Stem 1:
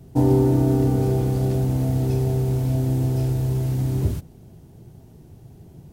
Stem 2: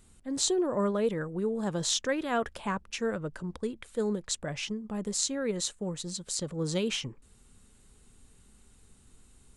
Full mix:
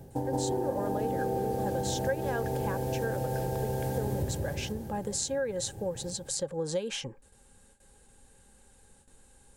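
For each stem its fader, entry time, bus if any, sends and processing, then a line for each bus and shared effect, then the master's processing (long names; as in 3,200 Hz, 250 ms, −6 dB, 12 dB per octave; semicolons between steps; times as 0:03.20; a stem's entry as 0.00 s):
0.0 dB, 0.00 s, no send, echo send −4 dB, speech leveller; automatic ducking −12 dB, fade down 0.25 s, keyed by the second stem
−2.5 dB, 0.00 s, no send, no echo send, noise gate with hold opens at −49 dBFS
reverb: not used
echo: repeating echo 175 ms, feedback 51%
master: high-shelf EQ 6,300 Hz +7 dB; hollow resonant body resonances 540/810/1,600 Hz, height 16 dB, ringing for 45 ms; downward compressor 4 to 1, threshold −29 dBFS, peak gain reduction 13.5 dB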